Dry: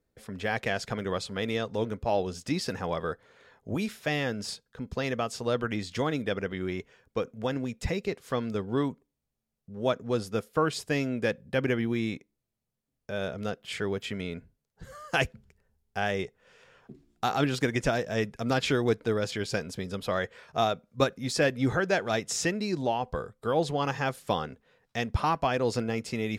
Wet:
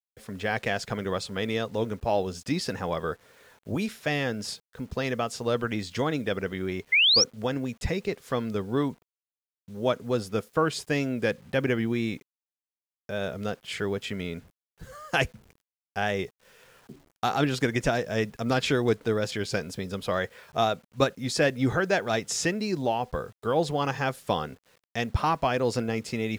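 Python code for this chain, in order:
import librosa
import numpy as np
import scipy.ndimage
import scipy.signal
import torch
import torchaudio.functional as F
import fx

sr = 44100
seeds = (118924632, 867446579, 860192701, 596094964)

y = fx.wow_flutter(x, sr, seeds[0], rate_hz=2.1, depth_cents=29.0)
y = fx.spec_paint(y, sr, seeds[1], shape='rise', start_s=6.92, length_s=0.32, low_hz=2000.0, high_hz=5900.0, level_db=-21.0)
y = fx.quant_dither(y, sr, seeds[2], bits=10, dither='none')
y = F.gain(torch.from_numpy(y), 1.5).numpy()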